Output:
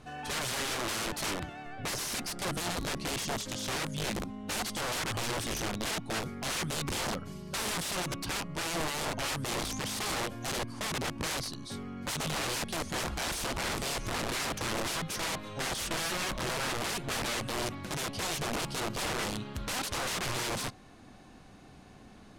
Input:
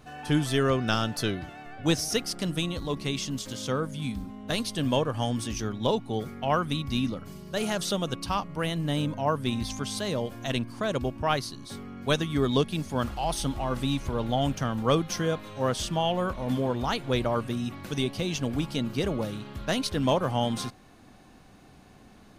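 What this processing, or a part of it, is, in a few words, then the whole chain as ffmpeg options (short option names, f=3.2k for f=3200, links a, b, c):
overflowing digital effects unit: -af "aeval=exprs='(mod(25.1*val(0)+1,2)-1)/25.1':c=same,lowpass=11k"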